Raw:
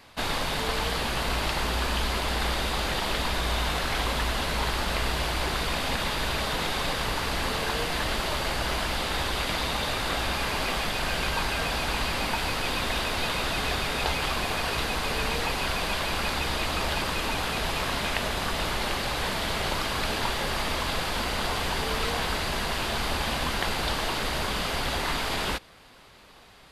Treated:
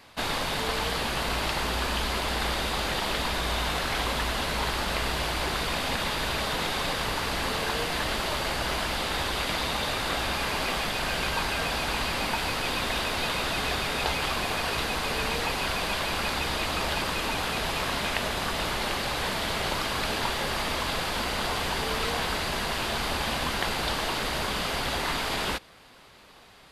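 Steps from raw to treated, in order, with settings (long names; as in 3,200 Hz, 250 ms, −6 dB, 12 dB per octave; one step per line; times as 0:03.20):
low-shelf EQ 70 Hz −5.5 dB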